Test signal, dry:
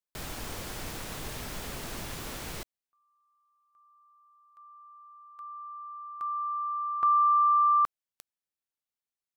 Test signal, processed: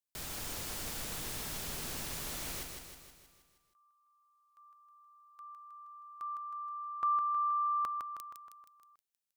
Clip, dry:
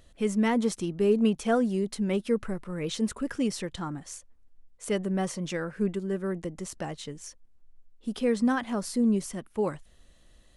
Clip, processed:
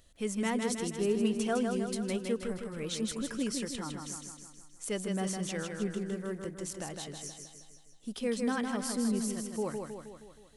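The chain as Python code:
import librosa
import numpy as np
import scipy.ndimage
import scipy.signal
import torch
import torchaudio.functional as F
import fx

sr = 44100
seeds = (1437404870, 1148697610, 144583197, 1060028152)

p1 = fx.high_shelf(x, sr, hz=3300.0, db=8.5)
p2 = p1 + fx.echo_feedback(p1, sr, ms=158, feedback_pct=56, wet_db=-5.0, dry=0)
y = F.gain(torch.from_numpy(p2), -7.0).numpy()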